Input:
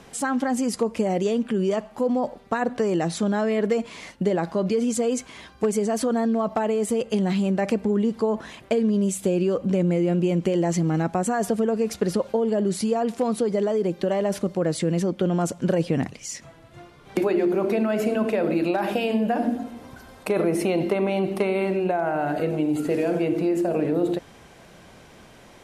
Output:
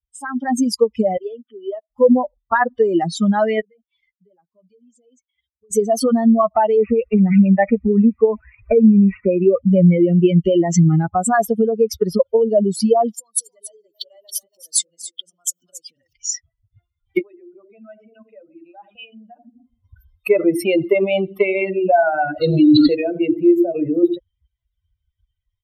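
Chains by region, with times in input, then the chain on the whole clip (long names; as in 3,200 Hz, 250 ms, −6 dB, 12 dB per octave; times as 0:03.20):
0:01.17–0:01.90: four-pole ladder high-pass 230 Hz, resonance 20% + high-frequency loss of the air 82 metres
0:03.61–0:05.71: downward compressor 2.5 to 1, threshold −41 dBFS + downward expander −41 dBFS + high-shelf EQ 11,000 Hz −11.5 dB
0:06.77–0:09.60: linear delta modulator 64 kbit/s, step −38 dBFS + bad sample-rate conversion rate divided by 8×, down none, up filtered + multiband upward and downward compressor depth 40%
0:13.14–0:16.13: downward compressor 5 to 1, threshold −33 dBFS + bass and treble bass −10 dB, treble +14 dB + single-tap delay 278 ms −5 dB
0:17.21–0:19.84: mains-hum notches 60/120/180/240/300/360/420/480/540 Hz + downward compressor 3 to 1, threshold −32 dBFS + high-frequency loss of the air 140 metres
0:22.41–0:22.95: low-pass with resonance 4,100 Hz, resonance Q 15 + high-shelf EQ 2,200 Hz −7 dB + envelope flattener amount 100%
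whole clip: spectral dynamics exaggerated over time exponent 3; automatic gain control gain up to 16 dB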